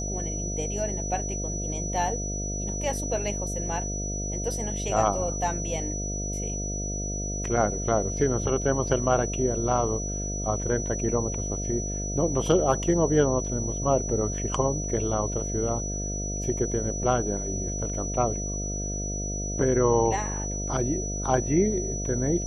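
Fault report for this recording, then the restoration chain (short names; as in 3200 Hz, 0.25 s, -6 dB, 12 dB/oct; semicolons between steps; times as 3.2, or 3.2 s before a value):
buzz 50 Hz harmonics 14 -32 dBFS
tone 5900 Hz -33 dBFS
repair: notch 5900 Hz, Q 30; de-hum 50 Hz, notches 14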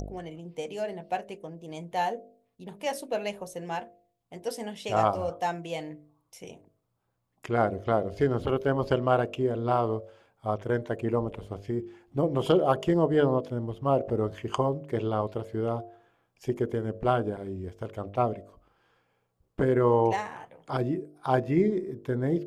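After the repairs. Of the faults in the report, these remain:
none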